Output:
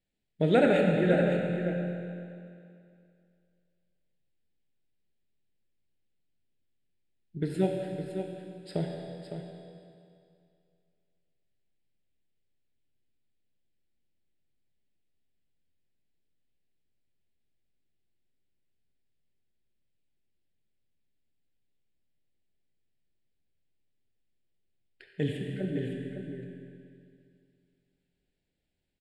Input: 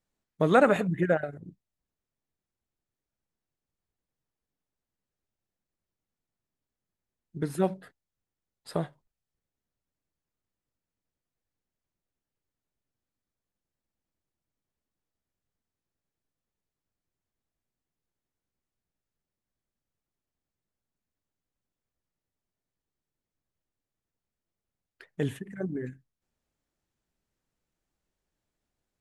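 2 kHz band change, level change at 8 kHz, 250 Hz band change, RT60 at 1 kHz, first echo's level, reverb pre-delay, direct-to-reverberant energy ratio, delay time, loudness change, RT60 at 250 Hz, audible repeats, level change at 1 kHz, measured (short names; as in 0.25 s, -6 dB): -1.5 dB, -5.5 dB, +2.5 dB, 2.4 s, -8.5 dB, 23 ms, 0.0 dB, 0.559 s, -1.5 dB, 2.4 s, 1, -5.5 dB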